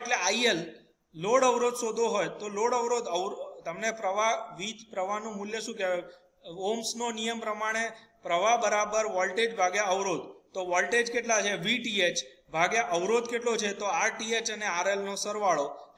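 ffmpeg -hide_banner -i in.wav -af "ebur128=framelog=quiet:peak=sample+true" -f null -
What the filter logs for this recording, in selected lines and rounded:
Integrated loudness:
  I:         -28.7 LUFS
  Threshold: -38.9 LUFS
Loudness range:
  LRA:         5.0 LU
  Threshold: -49.1 LUFS
  LRA low:   -32.5 LUFS
  LRA high:  -27.5 LUFS
Sample peak:
  Peak:       -9.7 dBFS
True peak:
  Peak:       -9.7 dBFS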